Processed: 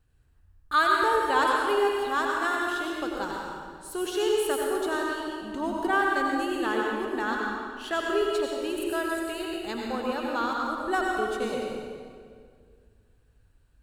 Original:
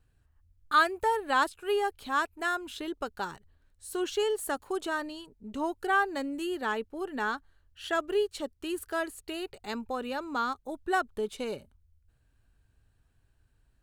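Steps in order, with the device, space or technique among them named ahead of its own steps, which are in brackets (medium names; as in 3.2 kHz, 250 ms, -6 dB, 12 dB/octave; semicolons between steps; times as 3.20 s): stairwell (reverberation RT60 2.1 s, pre-delay 80 ms, DRR -2 dB)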